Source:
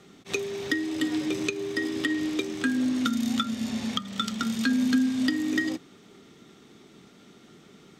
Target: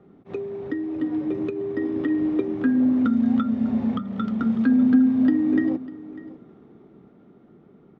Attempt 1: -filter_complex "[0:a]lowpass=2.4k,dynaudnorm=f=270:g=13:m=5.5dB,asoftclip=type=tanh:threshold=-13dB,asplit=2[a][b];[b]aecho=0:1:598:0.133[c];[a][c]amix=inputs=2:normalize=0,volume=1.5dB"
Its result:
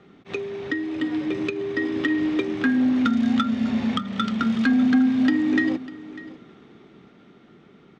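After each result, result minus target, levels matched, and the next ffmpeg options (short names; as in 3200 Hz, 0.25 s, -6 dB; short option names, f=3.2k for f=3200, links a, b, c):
2000 Hz band +11.0 dB; soft clip: distortion +14 dB
-filter_complex "[0:a]lowpass=850,dynaudnorm=f=270:g=13:m=5.5dB,asoftclip=type=tanh:threshold=-13dB,asplit=2[a][b];[b]aecho=0:1:598:0.133[c];[a][c]amix=inputs=2:normalize=0,volume=1.5dB"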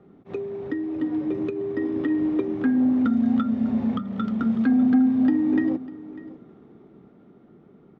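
soft clip: distortion +13 dB
-filter_complex "[0:a]lowpass=850,dynaudnorm=f=270:g=13:m=5.5dB,asoftclip=type=tanh:threshold=-5.5dB,asplit=2[a][b];[b]aecho=0:1:598:0.133[c];[a][c]amix=inputs=2:normalize=0,volume=1.5dB"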